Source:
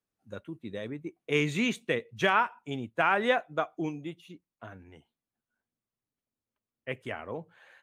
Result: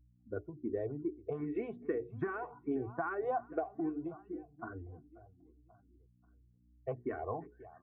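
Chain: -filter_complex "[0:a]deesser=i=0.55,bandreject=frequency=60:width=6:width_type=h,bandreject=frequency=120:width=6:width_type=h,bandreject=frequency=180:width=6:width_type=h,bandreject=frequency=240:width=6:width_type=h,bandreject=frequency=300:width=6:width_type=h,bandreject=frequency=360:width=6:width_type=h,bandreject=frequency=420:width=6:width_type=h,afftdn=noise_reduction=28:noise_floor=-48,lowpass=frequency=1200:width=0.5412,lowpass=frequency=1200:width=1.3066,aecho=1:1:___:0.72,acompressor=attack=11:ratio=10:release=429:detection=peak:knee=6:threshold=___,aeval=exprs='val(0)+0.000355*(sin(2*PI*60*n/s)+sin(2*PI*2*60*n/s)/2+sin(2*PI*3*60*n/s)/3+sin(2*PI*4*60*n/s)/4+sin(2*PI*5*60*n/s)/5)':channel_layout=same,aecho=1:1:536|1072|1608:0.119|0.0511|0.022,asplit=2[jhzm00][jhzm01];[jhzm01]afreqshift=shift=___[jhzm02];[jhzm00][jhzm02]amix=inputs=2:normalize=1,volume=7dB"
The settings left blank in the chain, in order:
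2.7, -36dB, 2.5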